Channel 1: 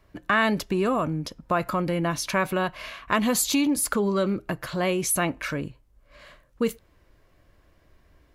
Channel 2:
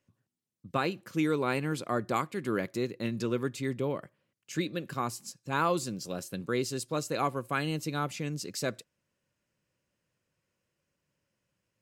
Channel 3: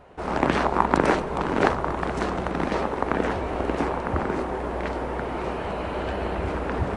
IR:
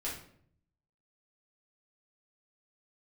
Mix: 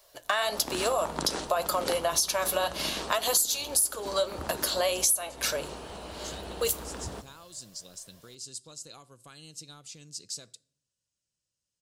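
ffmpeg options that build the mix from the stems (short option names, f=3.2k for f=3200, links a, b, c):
-filter_complex "[0:a]lowshelf=f=380:t=q:w=3:g=-14,flanger=delay=4.7:depth=4.9:regen=57:speed=1.8:shape=triangular,volume=1.5dB,asplit=2[a][b];[b]volume=-17dB[c];[1:a]acompressor=threshold=-32dB:ratio=10,asubboost=boost=2.5:cutoff=120,lowpass=f=9.3k:w=0.5412,lowpass=f=9.3k:w=1.3066,adelay=1750,volume=-15.5dB,asplit=2[d][e];[e]volume=-20dB[f];[2:a]adelay=250,volume=-14dB,asplit=2[g][h];[h]volume=-14.5dB[i];[3:a]atrim=start_sample=2205[j];[c][f][i]amix=inputs=3:normalize=0[k];[k][j]afir=irnorm=-1:irlink=0[l];[a][d][g][l]amix=inputs=4:normalize=0,aexciter=amount=6.8:drive=4.5:freq=3.2k,acompressor=threshold=-23dB:ratio=8"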